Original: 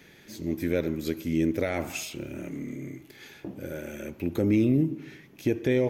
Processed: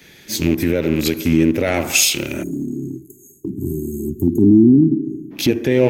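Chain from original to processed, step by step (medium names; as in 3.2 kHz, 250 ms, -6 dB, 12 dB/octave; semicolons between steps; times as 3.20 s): rattle on loud lows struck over -35 dBFS, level -31 dBFS; 2.43–5.31 s: spectral selection erased 430–6400 Hz; short-mantissa float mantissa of 6-bit; 4.27–5.51 s: graphic EQ 250/1000/4000/8000 Hz +8/+5/+6/-4 dB; band-passed feedback delay 70 ms, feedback 74%, band-pass 380 Hz, level -20 dB; compression 2:1, threshold -36 dBFS, peak gain reduction 13 dB; 1.81–3.50 s: bass shelf 270 Hz -4.5 dB; loudness maximiser +25 dB; three bands expanded up and down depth 70%; trim -5 dB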